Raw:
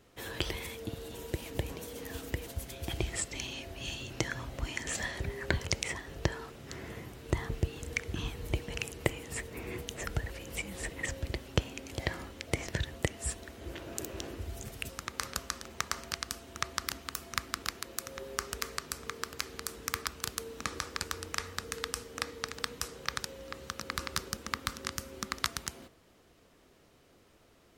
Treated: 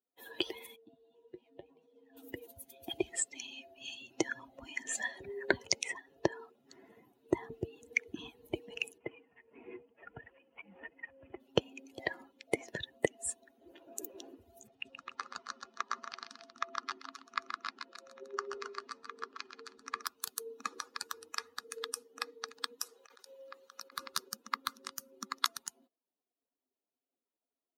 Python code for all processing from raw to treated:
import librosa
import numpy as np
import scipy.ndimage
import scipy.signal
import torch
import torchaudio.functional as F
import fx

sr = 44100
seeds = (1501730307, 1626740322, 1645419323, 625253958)

y = fx.chain(x, sr, fx.lowpass(hz=4400.0, slope=12),
    fx.comb_fb(f0_hz=52.0, decay_s=0.24, harmonics='odd', damping=0.0, mix_pct=70), at=(0.76, 2.17))
y = fx.chain(y, sr, fx.cvsd(bps=16000),
    fx.tremolo_shape(shape='triangle', hz=1.8, depth_pct=60),
    fx.band_squash(depth_pct=40), at=(8.98, 11.4))
y = fx.chain(y, sr, fx.air_absorb(metres=93.0),
    fx.echo_multitap(ms=(127, 271), db=(-4.5, -6.0)), at=(14.67, 20.03))
y = fx.chain(y, sr, fx.low_shelf(hz=250.0, db=-11.0),
    fx.over_compress(threshold_db=-41.0, ratio=-1.0), at=(22.86, 23.97))
y = fx.bin_expand(y, sr, power=2.0)
y = scipy.signal.sosfilt(scipy.signal.butter(2, 240.0, 'highpass', fs=sr, output='sos'), y)
y = fx.dynamic_eq(y, sr, hz=410.0, q=1.4, threshold_db=-60.0, ratio=4.0, max_db=5)
y = F.gain(torch.from_numpy(y), 4.0).numpy()